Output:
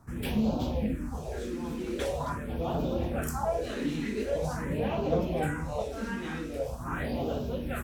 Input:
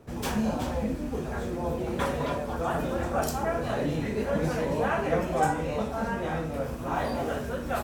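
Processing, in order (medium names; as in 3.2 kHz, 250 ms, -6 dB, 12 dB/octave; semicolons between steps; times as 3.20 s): phase shifter stages 4, 0.44 Hz, lowest notch 100–1800 Hz; loudspeaker Doppler distortion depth 0.13 ms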